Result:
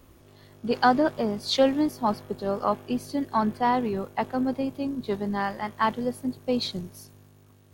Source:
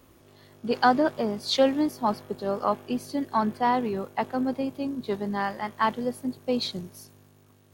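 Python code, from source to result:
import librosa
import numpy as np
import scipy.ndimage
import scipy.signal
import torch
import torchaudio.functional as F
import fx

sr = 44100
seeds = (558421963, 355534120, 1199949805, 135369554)

y = fx.low_shelf(x, sr, hz=83.0, db=10.0)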